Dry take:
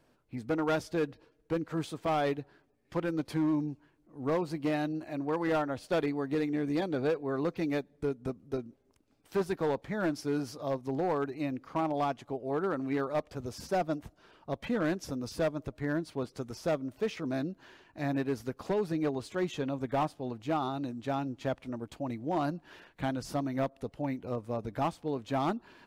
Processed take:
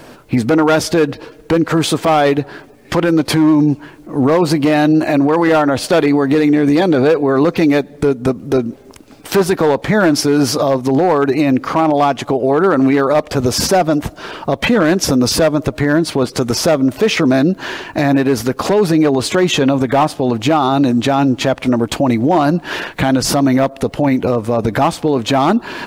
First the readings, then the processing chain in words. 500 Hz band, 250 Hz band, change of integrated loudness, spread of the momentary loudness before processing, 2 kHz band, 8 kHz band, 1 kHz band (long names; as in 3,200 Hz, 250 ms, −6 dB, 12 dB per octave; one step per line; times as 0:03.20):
+18.5 dB, +20.0 dB, +19.5 dB, 8 LU, +20.0 dB, +27.5 dB, +18.5 dB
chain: low-shelf EQ 120 Hz −7 dB
in parallel at +2.5 dB: downward compressor, threshold −43 dBFS, peak gain reduction 15.5 dB
on the sum: boost into a limiter +28 dB
level −4 dB